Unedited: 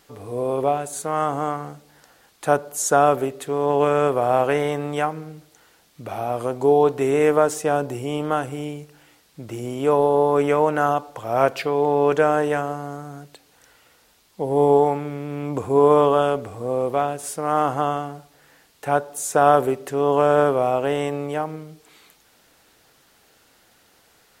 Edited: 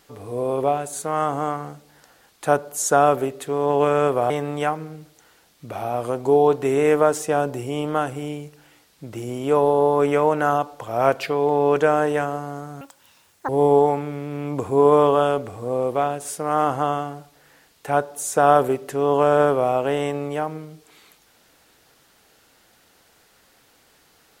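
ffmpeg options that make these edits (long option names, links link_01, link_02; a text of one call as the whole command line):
ffmpeg -i in.wav -filter_complex "[0:a]asplit=4[link_01][link_02][link_03][link_04];[link_01]atrim=end=4.302[link_05];[link_02]atrim=start=4.658:end=13.174[link_06];[link_03]atrim=start=13.17:end=14.47,asetpts=PTS-STARTPTS,asetrate=84672,aresample=44100,atrim=end_sample=29859,asetpts=PTS-STARTPTS[link_07];[link_04]atrim=start=14.466[link_08];[link_05][link_06]acrossfade=duration=0.004:curve1=hsin:curve2=hsin[link_09];[link_09][link_07]acrossfade=duration=0.004:curve1=hsin:curve2=hsin[link_10];[link_10][link_08]acrossfade=duration=0.004:curve1=hsin:curve2=hsin" out.wav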